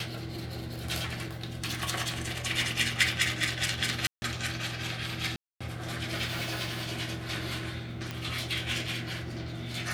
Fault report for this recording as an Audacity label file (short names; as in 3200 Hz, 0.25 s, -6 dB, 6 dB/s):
4.070000	4.220000	gap 0.15 s
5.360000	5.610000	gap 0.245 s
8.110000	8.110000	pop -20 dBFS